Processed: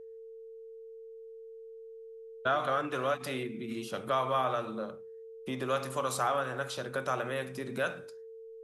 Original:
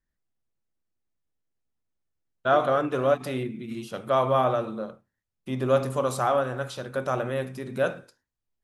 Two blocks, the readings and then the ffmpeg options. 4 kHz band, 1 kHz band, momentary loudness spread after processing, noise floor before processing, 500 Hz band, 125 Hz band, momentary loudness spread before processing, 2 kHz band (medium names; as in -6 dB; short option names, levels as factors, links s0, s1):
-1.0 dB, -5.0 dB, 19 LU, -84 dBFS, -8.5 dB, -9.5 dB, 13 LU, -2.0 dB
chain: -filter_complex "[0:a]acrossover=split=220|960[s0][s1][s2];[s0]acompressor=threshold=0.00447:ratio=4[s3];[s1]acompressor=threshold=0.0158:ratio=4[s4];[s2]acompressor=threshold=0.0398:ratio=4[s5];[s3][s4][s5]amix=inputs=3:normalize=0,aeval=exprs='val(0)+0.00562*sin(2*PI*450*n/s)':c=same"